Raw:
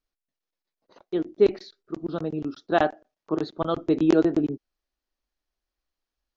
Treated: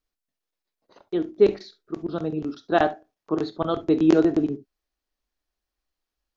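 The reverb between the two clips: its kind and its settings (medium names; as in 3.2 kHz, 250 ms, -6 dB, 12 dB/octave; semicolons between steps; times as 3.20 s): gated-style reverb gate 90 ms flat, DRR 11.5 dB; trim +1 dB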